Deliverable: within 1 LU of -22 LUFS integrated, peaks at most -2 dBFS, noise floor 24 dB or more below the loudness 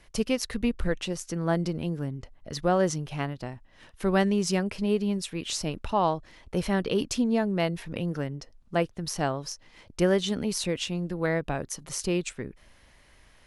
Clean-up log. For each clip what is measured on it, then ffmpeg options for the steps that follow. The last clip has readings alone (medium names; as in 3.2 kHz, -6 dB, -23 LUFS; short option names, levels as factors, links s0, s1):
loudness -28.5 LUFS; peak level -9.0 dBFS; loudness target -22.0 LUFS
-> -af "volume=2.11"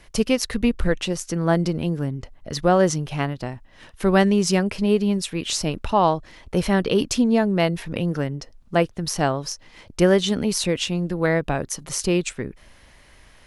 loudness -22.0 LUFS; peak level -2.5 dBFS; noise floor -51 dBFS